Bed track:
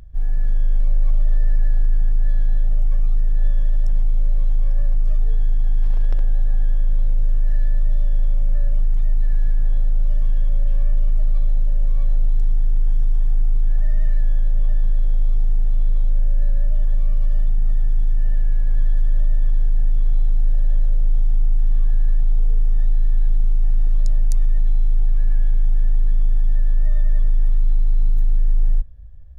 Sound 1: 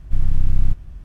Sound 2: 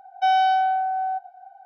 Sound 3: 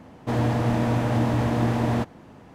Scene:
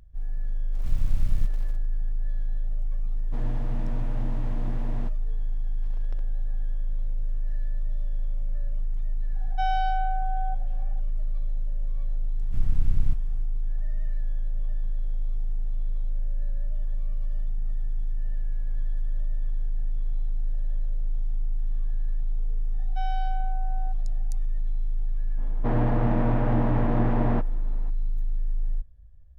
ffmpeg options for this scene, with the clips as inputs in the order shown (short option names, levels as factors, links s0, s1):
-filter_complex "[1:a]asplit=2[s0][s1];[3:a]asplit=2[s2][s3];[2:a]asplit=2[s4][s5];[0:a]volume=0.299[s6];[s0]acrusher=bits=6:mix=0:aa=0.000001[s7];[s2]bass=f=250:g=5,treble=f=4000:g=-4[s8];[s4]equalizer=f=1200:w=1.1:g=3.5[s9];[s3]lowpass=1800[s10];[s7]atrim=end=1.04,asetpts=PTS-STARTPTS,volume=0.376,afade=t=in:d=0.004:c=hsin,afade=t=out:st=1.036:d=0.004:c=hsin,adelay=730[s11];[s8]atrim=end=2.54,asetpts=PTS-STARTPTS,volume=0.15,afade=t=in:d=0.004:c=hsin,afade=t=out:st=2.536:d=0.004:c=hsin,adelay=134505S[s12];[s9]atrim=end=1.65,asetpts=PTS-STARTPTS,volume=0.316,afade=t=in:d=0.004:c=hsin,afade=t=out:st=1.646:d=0.004:c=hsin,adelay=9360[s13];[s1]atrim=end=1.04,asetpts=PTS-STARTPTS,volume=0.473,afade=t=in:d=0.004:c=hsin,afade=t=out:st=1.036:d=0.004:c=hsin,adelay=12410[s14];[s5]atrim=end=1.65,asetpts=PTS-STARTPTS,volume=0.158,afade=t=in:d=0.004:c=hsin,afade=t=out:st=1.646:d=0.004:c=hsin,adelay=22740[s15];[s10]atrim=end=2.54,asetpts=PTS-STARTPTS,volume=0.794,afade=t=in:d=0.02,afade=t=out:st=2.52:d=0.02,adelay=25370[s16];[s6][s11][s12][s13][s14][s15][s16]amix=inputs=7:normalize=0"